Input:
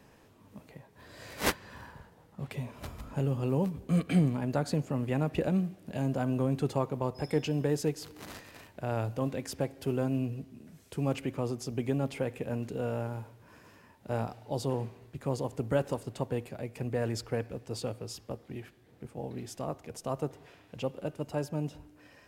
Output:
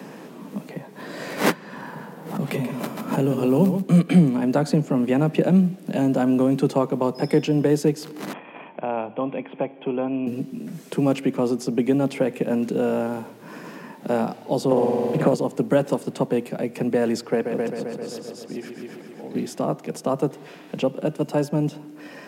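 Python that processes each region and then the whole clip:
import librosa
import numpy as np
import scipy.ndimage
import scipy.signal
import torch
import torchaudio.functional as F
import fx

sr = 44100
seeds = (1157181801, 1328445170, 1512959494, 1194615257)

y = fx.chain(x, sr, fx.high_shelf(hz=11000.0, db=9.0),
    fx.echo_single(ms=134, db=-8.0),
    fx.pre_swell(db_per_s=120.0), at=(1.86, 3.82))
y = fx.chain(y, sr, fx.cheby_ripple(hz=3400.0, ripple_db=9),
    fx.low_shelf(hz=76.0, db=-12.0), at=(8.33, 10.27))
y = fx.chain(y, sr, fx.peak_eq(hz=620.0, db=8.0, octaves=0.72),
    fx.room_flutter(wall_m=9.0, rt60_s=1.0),
    fx.band_squash(depth_pct=100), at=(14.71, 15.34))
y = fx.chain(y, sr, fx.low_shelf(hz=100.0, db=-12.0),
    fx.auto_swell(attack_ms=572.0),
    fx.echo_heads(ms=131, heads='first and second', feedback_pct=48, wet_db=-7.0), at=(17.32, 19.35))
y = scipy.signal.sosfilt(scipy.signal.butter(8, 160.0, 'highpass', fs=sr, output='sos'), y)
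y = fx.low_shelf(y, sr, hz=380.0, db=7.5)
y = fx.band_squash(y, sr, depth_pct=40)
y = y * librosa.db_to_amplitude(8.0)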